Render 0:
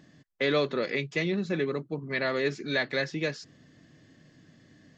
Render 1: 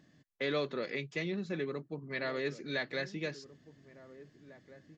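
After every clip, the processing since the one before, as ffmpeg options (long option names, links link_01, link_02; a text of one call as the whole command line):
ffmpeg -i in.wav -filter_complex "[0:a]asplit=2[link_01][link_02];[link_02]adelay=1749,volume=-16dB,highshelf=frequency=4000:gain=-39.4[link_03];[link_01][link_03]amix=inputs=2:normalize=0,volume=-7.5dB" out.wav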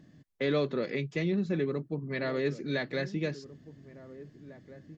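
ffmpeg -i in.wav -af "lowshelf=frequency=470:gain=10" out.wav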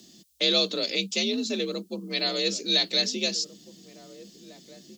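ffmpeg -i in.wav -af "afreqshift=54,aexciter=amount=13.8:drive=4.9:freq=2900" out.wav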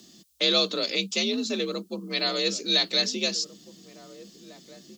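ffmpeg -i in.wav -af "equalizer=frequency=1200:width=1.7:gain=6.5" out.wav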